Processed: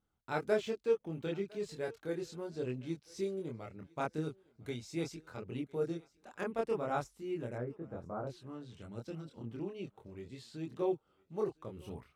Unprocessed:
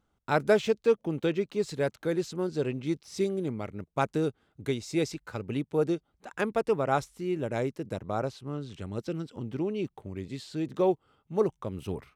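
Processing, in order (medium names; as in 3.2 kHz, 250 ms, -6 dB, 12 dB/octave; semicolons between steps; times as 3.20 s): 7.55–8.27 s: Chebyshev low-pass 1.5 kHz, order 3; chorus voices 2, 0.37 Hz, delay 25 ms, depth 1.5 ms; thinning echo 1006 ms, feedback 28%, high-pass 400 Hz, level -23 dB; trim -6.5 dB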